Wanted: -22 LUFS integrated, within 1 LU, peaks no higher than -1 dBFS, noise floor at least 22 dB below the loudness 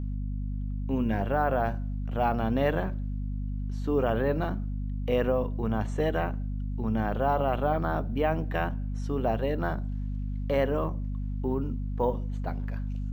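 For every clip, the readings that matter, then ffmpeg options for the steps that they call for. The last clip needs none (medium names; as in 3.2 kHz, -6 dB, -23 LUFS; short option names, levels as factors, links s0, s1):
hum 50 Hz; highest harmonic 250 Hz; hum level -29 dBFS; loudness -29.5 LUFS; peak level -12.5 dBFS; loudness target -22.0 LUFS
-> -af "bandreject=f=50:t=h:w=4,bandreject=f=100:t=h:w=4,bandreject=f=150:t=h:w=4,bandreject=f=200:t=h:w=4,bandreject=f=250:t=h:w=4"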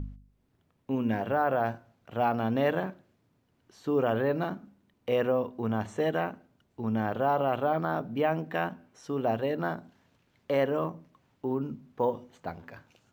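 hum not found; loudness -30.0 LUFS; peak level -14.5 dBFS; loudness target -22.0 LUFS
-> -af "volume=2.51"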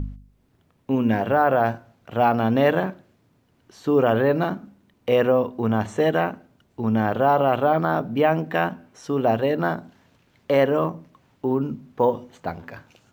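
loudness -22.0 LUFS; peak level -6.5 dBFS; noise floor -63 dBFS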